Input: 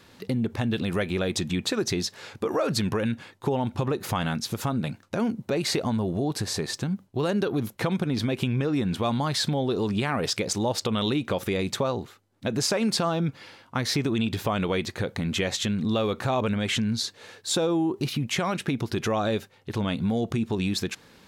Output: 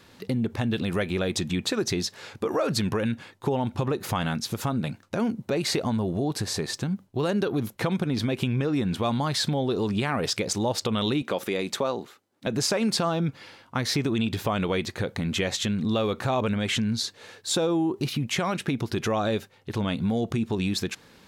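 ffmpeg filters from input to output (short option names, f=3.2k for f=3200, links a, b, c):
-filter_complex "[0:a]asettb=1/sr,asplit=3[a][b][c];[a]atrim=end=11.224[d];[b]atrim=start=11.22:end=12.47,asetpts=PTS-STARTPTS,afade=t=in:d=0.004:c=qsin,afade=t=out:st=1.246:d=0.004:c=qsin,highpass=220[e];[c]atrim=start=12.466[f];[d][e]acrossfade=d=0.004:c1=hsin:c2=qsin[g];[g][f]acrossfade=d=0.004:c1=qsin:c2=hsin"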